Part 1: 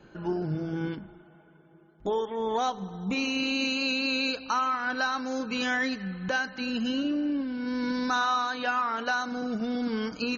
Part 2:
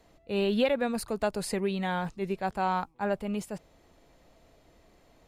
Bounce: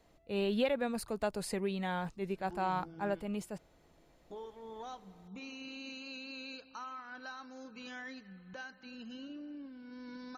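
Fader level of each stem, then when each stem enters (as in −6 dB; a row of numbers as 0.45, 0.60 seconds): −18.0, −5.5 decibels; 2.25, 0.00 seconds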